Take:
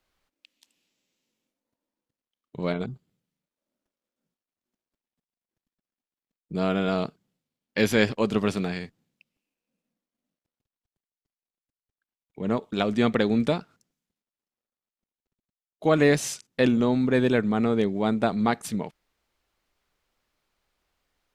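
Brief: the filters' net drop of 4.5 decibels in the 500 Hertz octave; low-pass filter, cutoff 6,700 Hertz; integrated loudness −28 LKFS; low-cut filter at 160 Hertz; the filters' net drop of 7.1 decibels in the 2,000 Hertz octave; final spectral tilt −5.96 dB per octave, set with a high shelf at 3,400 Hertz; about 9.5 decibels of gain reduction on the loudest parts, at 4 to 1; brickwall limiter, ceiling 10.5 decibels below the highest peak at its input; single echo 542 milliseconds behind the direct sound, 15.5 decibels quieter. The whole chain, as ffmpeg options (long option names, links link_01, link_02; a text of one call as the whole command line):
ffmpeg -i in.wav -af "highpass=160,lowpass=6700,equalizer=frequency=500:width_type=o:gain=-5,equalizer=frequency=2000:width_type=o:gain=-7.5,highshelf=frequency=3400:gain=-4.5,acompressor=threshold=-31dB:ratio=4,alimiter=level_in=4dB:limit=-24dB:level=0:latency=1,volume=-4dB,aecho=1:1:542:0.168,volume=11dB" out.wav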